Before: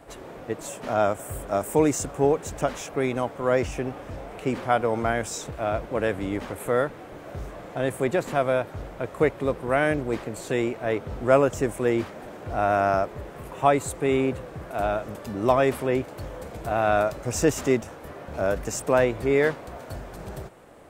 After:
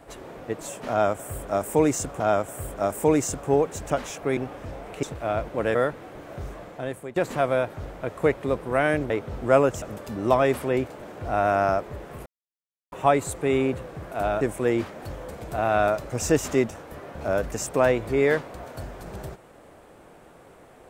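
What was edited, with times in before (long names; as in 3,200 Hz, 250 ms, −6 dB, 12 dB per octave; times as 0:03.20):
0:00.91–0:02.20: repeat, 2 plays
0:03.08–0:03.82: remove
0:04.48–0:05.40: remove
0:06.12–0:06.72: remove
0:07.52–0:08.13: fade out, to −18 dB
0:10.07–0:10.89: remove
0:11.61–0:12.25: swap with 0:15.00–0:16.18
0:13.51: splice in silence 0.66 s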